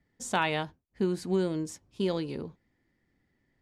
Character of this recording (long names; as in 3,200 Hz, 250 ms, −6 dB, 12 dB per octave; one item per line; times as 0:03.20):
background noise floor −75 dBFS
spectral slope −5.0 dB per octave